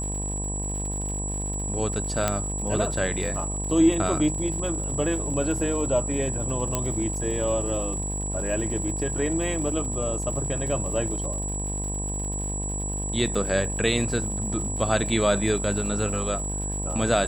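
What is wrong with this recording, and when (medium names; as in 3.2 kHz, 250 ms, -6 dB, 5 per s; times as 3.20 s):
buzz 50 Hz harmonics 21 -31 dBFS
crackle 140 per s -35 dBFS
whine 7.8 kHz -31 dBFS
2.28 s: pop -8 dBFS
6.75 s: pop -9 dBFS
13.35 s: dropout 3.4 ms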